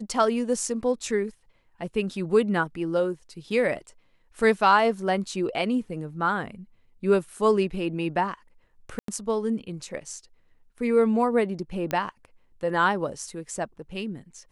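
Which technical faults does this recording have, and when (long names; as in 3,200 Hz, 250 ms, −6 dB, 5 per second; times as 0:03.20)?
0:08.99–0:09.08: drop-out 93 ms
0:11.91: click −13 dBFS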